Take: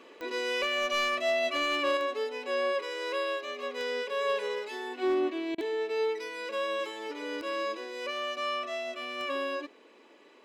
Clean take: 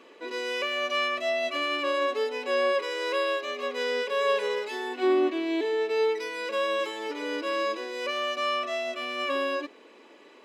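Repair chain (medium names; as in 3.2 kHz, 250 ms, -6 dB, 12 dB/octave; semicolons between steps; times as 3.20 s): clip repair -21.5 dBFS; de-click; interpolate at 5.55 s, 30 ms; gain correction +4.5 dB, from 1.97 s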